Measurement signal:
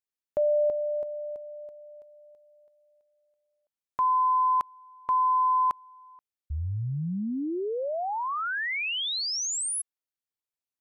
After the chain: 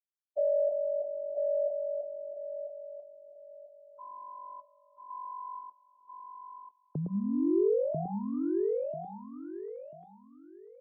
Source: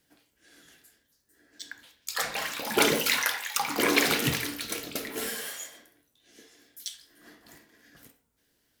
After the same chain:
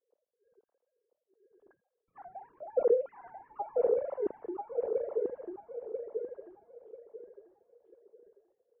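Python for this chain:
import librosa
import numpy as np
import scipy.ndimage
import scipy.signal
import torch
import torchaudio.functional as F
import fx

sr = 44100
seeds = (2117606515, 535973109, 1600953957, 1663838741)

y = fx.sine_speech(x, sr)
y = fx.peak_eq(y, sr, hz=230.0, db=3.5, octaves=0.77)
y = fx.leveller(y, sr, passes=1)
y = fx.ladder_lowpass(y, sr, hz=540.0, resonance_pct=35)
y = fx.echo_feedback(y, sr, ms=991, feedback_pct=27, wet_db=-3.5)
y = y * librosa.db_to_amplitude(2.0)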